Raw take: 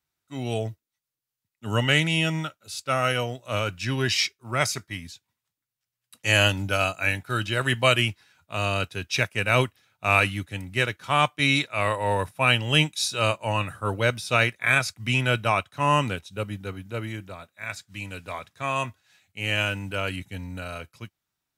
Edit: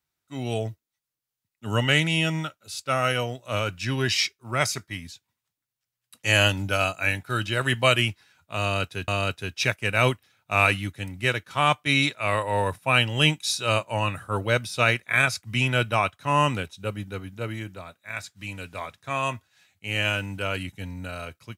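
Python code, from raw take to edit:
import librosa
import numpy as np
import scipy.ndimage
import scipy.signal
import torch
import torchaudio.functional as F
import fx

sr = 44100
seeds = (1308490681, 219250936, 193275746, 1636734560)

y = fx.edit(x, sr, fx.repeat(start_s=8.61, length_s=0.47, count=2), tone=tone)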